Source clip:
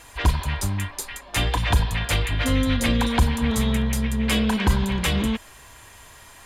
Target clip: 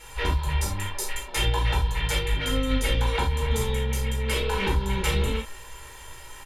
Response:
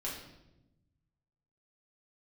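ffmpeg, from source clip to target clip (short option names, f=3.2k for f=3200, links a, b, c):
-filter_complex "[0:a]aecho=1:1:2.2:0.66,acompressor=threshold=-22dB:ratio=6[a];[1:a]atrim=start_sample=2205,atrim=end_sample=3969[b];[a][b]afir=irnorm=-1:irlink=0"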